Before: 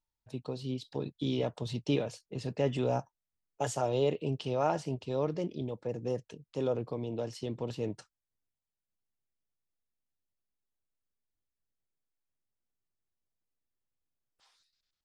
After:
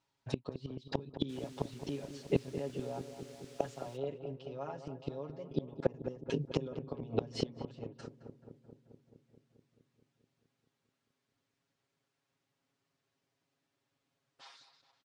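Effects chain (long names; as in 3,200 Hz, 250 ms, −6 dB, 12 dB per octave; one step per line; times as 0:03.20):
high-pass filter 130 Hz 12 dB per octave
comb filter 7.3 ms, depth 96%
gate with flip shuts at −28 dBFS, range −28 dB
0:01.28–0:03.96: background noise blue −61 dBFS
high-frequency loss of the air 97 metres
feedback echo with a low-pass in the loop 216 ms, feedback 75%, low-pass 1,300 Hz, level −10 dB
level +12.5 dB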